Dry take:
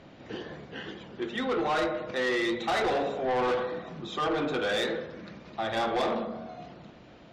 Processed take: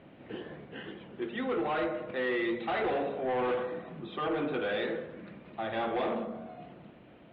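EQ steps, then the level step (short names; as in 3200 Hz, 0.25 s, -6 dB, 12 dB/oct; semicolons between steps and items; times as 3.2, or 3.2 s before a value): inverse Chebyshev low-pass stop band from 5800 Hz, stop band 40 dB; low shelf 95 Hz -9.5 dB; bell 1200 Hz -5 dB 2.4 oct; 0.0 dB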